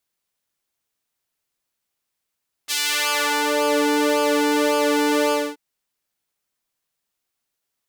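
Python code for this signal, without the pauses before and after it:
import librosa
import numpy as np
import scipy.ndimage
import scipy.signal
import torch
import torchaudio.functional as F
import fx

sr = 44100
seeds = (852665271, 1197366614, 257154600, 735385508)

y = fx.sub_patch_pwm(sr, seeds[0], note=62, wave2='sine', interval_st=7, detune_cents=16, level2_db=-4.5, sub_db=-23, noise_db=-29.0, kind='highpass', cutoff_hz=350.0, q=0.85, env_oct=3.5, env_decay_s=0.98, env_sustain_pct=5, attack_ms=30.0, decay_s=0.83, sustain_db=-8.5, release_s=0.24, note_s=2.64, lfo_hz=1.8, width_pct=35, width_swing_pct=20)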